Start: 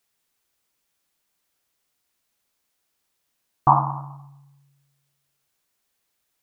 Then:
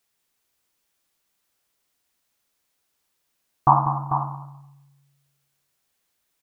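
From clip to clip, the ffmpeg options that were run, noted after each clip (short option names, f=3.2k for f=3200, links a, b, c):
-af "aecho=1:1:192|443:0.282|0.376"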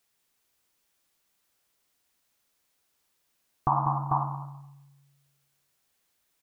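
-af "alimiter=limit=-13dB:level=0:latency=1:release=268"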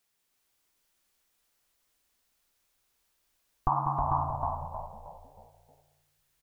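-filter_complex "[0:a]asubboost=boost=6.5:cutoff=61,asplit=6[a][b][c][d][e][f];[b]adelay=314,afreqshift=-57,volume=-3dB[g];[c]adelay=628,afreqshift=-114,volume=-10.7dB[h];[d]adelay=942,afreqshift=-171,volume=-18.5dB[i];[e]adelay=1256,afreqshift=-228,volume=-26.2dB[j];[f]adelay=1570,afreqshift=-285,volume=-34dB[k];[a][g][h][i][j][k]amix=inputs=6:normalize=0,volume=-2.5dB"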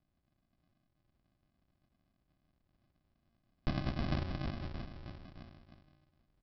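-af "acompressor=threshold=-54dB:ratio=1.5,aresample=11025,acrusher=samples=24:mix=1:aa=0.000001,aresample=44100,volume=4dB"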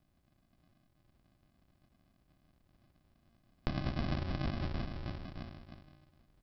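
-af "acompressor=threshold=-38dB:ratio=6,volume=7dB"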